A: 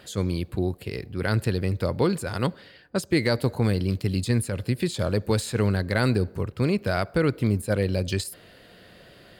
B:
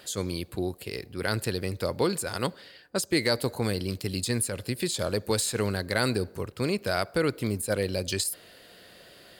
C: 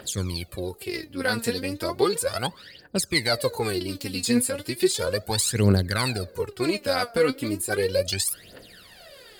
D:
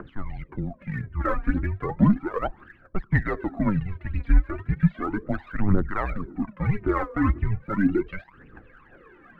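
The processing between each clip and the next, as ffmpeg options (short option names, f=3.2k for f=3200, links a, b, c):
-af "bass=f=250:g=-7,treble=f=4k:g=8,volume=-1.5dB"
-af "aphaser=in_gain=1:out_gain=1:delay=4.4:decay=0.78:speed=0.35:type=triangular"
-af "highpass=f=180:t=q:w=0.5412,highpass=f=180:t=q:w=1.307,lowpass=f=2.1k:t=q:w=0.5176,lowpass=f=2.1k:t=q:w=0.7071,lowpass=f=2.1k:t=q:w=1.932,afreqshift=-200,aphaser=in_gain=1:out_gain=1:delay=2:decay=0.61:speed=1.9:type=triangular"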